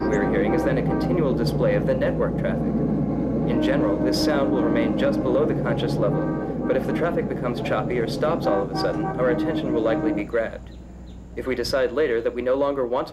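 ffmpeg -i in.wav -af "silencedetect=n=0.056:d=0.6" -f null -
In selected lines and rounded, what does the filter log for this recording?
silence_start: 10.56
silence_end: 11.38 | silence_duration: 0.82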